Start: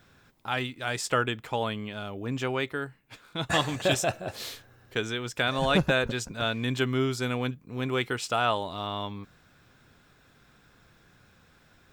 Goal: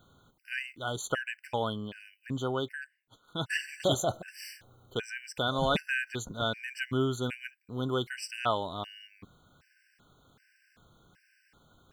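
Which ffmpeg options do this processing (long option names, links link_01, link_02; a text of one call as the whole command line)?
ffmpeg -i in.wav -filter_complex "[0:a]asplit=3[link_01][link_02][link_03];[link_01]afade=type=out:start_time=2.81:duration=0.02[link_04];[link_02]aeval=exprs='0.0794*(cos(1*acos(clip(val(0)/0.0794,-1,1)))-cos(1*PI/2))+0.0158*(cos(3*acos(clip(val(0)/0.0794,-1,1)))-cos(3*PI/2))':channel_layout=same,afade=type=in:start_time=2.81:duration=0.02,afade=type=out:start_time=3.27:duration=0.02[link_05];[link_03]afade=type=in:start_time=3.27:duration=0.02[link_06];[link_04][link_05][link_06]amix=inputs=3:normalize=0,afftfilt=real='re*gt(sin(2*PI*1.3*pts/sr)*(1-2*mod(floor(b*sr/1024/1500),2)),0)':imag='im*gt(sin(2*PI*1.3*pts/sr)*(1-2*mod(floor(b*sr/1024/1500),2)),0)':win_size=1024:overlap=0.75,volume=-1.5dB" out.wav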